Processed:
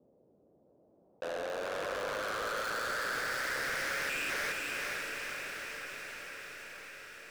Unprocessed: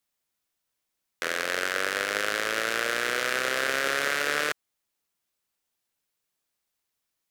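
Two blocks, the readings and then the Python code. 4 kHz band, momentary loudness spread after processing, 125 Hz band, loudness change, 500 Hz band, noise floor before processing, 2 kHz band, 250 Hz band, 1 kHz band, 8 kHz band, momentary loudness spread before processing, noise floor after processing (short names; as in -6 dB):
-9.0 dB, 11 LU, -3.5 dB, -9.0 dB, -6.0 dB, -82 dBFS, -7.0 dB, -7.5 dB, -5.5 dB, -7.5 dB, 5 LU, -67 dBFS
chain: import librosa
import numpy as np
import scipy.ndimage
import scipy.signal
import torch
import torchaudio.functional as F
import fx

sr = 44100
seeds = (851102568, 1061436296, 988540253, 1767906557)

p1 = fx.spec_erase(x, sr, start_s=4.09, length_s=0.21, low_hz=400.0, high_hz=2400.0)
p2 = fx.env_lowpass(p1, sr, base_hz=400.0, full_db=-28.0)
p3 = scipy.signal.sosfilt(scipy.signal.butter(2, 110.0, 'highpass', fs=sr, output='sos'), p2)
p4 = fx.low_shelf(p3, sr, hz=420.0, db=-6.0)
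p5 = fx.leveller(p4, sr, passes=1)
p6 = fx.filter_sweep_lowpass(p5, sr, from_hz=530.0, to_hz=2300.0, start_s=0.59, end_s=3.89, q=2.4)
p7 = 10.0 ** (-38.5 / 20.0) * np.tanh(p6 / 10.0 ** (-38.5 / 20.0))
p8 = p7 + fx.echo_diffused(p7, sr, ms=469, feedback_pct=54, wet_db=-4.0, dry=0)
p9 = fx.env_flatten(p8, sr, amount_pct=50)
y = p9 * 10.0 ** (2.5 / 20.0)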